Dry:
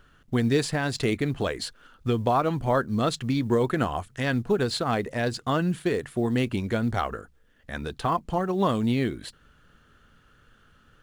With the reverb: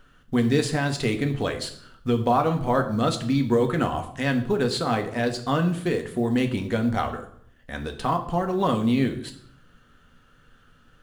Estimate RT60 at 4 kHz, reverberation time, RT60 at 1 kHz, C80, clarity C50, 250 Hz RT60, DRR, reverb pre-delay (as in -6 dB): 0.55 s, 0.65 s, 0.60 s, 14.5 dB, 11.5 dB, 0.80 s, 5.0 dB, 4 ms